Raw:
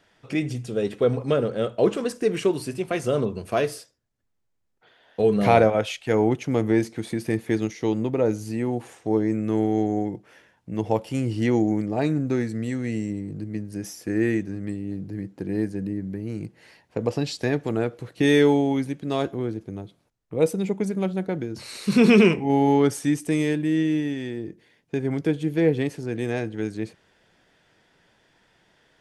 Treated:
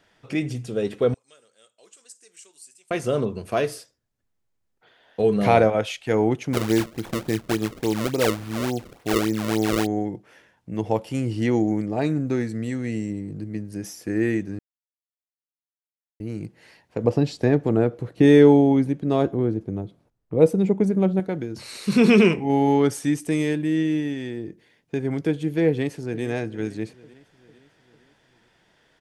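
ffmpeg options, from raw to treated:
-filter_complex "[0:a]asettb=1/sr,asplit=3[a][b][c];[a]atrim=end=1.144[d];[b]atrim=start=1.14:end=2.91,asetpts=PTS-STARTPTS,afade=t=in:d=0.004:c=qsin,afade=t=out:st=1.766:d=0.004:c=qsin,bandpass=f=7.7k:t=q:w=3.6[e];[c]atrim=start=2.906[f];[d][e]acrossfade=d=0.004:c1=hsin:c2=qsin[g];[g][f]acrossfade=d=0.004:c1=qsin:c2=hsin,asettb=1/sr,asplit=3[h][i][j];[h]atrim=end=6.534[k];[i]atrim=start=6.53:end=9.87,asetpts=PTS-STARTPTS,afade=t=in:d=0.004:c=qsin,afade=t=out:st=3.336:d=0.004:c=qsin,acrusher=samples=31:mix=1:aa=0.000001:lfo=1:lforange=49.6:lforate=3.5[l];[j]atrim=start=9.866[m];[k][l]acrossfade=d=0.004:c1=hsin:c2=qsin[n];[n][m]acrossfade=d=0.004:c1=qsin:c2=hsin,asettb=1/sr,asplit=3[o][p][q];[o]atrim=end=17.044[r];[p]atrim=start=17.04:end=21.2,asetpts=PTS-STARTPTS,afade=t=in:d=0.004:c=qsin,afade=t=out:st=4.156:d=0.004:c=qsin,tiltshelf=f=1.3k:g=6[s];[q]atrim=start=21.196[t];[r][s]acrossfade=d=0.004:c1=hsin:c2=qsin[u];[u][t]acrossfade=d=0.004:c1=qsin:c2=hsin,asplit=2[v][w];[w]afade=t=in:st=25.68:d=0.01,afade=t=out:st=26.23:d=0.01,aecho=0:1:450|900|1350|1800|2250:0.141254|0.0776896|0.0427293|0.0235011|0.0129256[x];[v][x]amix=inputs=2:normalize=0,asplit=3[y][z][aa];[y]atrim=end=14.59,asetpts=PTS-STARTPTS,afade=t=out:st=14.586:d=0.004:c=hsin[ab];[z]atrim=start=14.59:end=16.2,asetpts=PTS-STARTPTS,volume=0[ac];[aa]atrim=start=16.2,asetpts=PTS-STARTPTS,afade=t=in:d=0.004:c=hsin[ad];[ab][ac][ad]concat=n=3:v=0:a=1"

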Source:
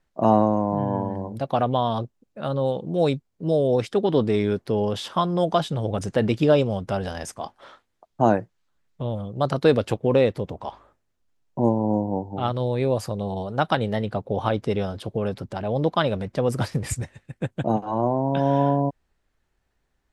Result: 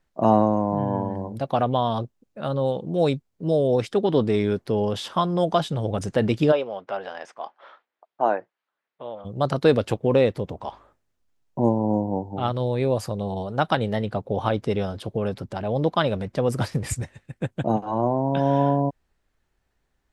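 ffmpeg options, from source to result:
-filter_complex "[0:a]asplit=3[a][b][c];[a]afade=t=out:st=6.51:d=0.02[d];[b]highpass=530,lowpass=2.7k,afade=t=in:st=6.51:d=0.02,afade=t=out:st=9.24:d=0.02[e];[c]afade=t=in:st=9.24:d=0.02[f];[d][e][f]amix=inputs=3:normalize=0"

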